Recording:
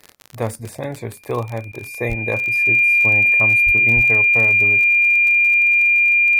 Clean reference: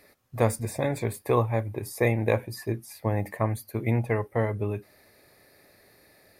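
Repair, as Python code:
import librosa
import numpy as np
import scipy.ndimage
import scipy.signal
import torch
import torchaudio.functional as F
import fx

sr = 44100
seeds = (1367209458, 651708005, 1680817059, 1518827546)

y = fx.fix_declick_ar(x, sr, threshold=6.5)
y = fx.notch(y, sr, hz=2400.0, q=30.0)
y = fx.highpass(y, sr, hz=140.0, slope=24, at=(2.08, 2.2), fade=0.02)
y = fx.highpass(y, sr, hz=140.0, slope=24, at=(3.65, 3.77), fade=0.02)
y = fx.highpass(y, sr, hz=140.0, slope=24, at=(3.95, 4.07), fade=0.02)
y = fx.fix_interpolate(y, sr, at_s=(1.72,), length_ms=11.0)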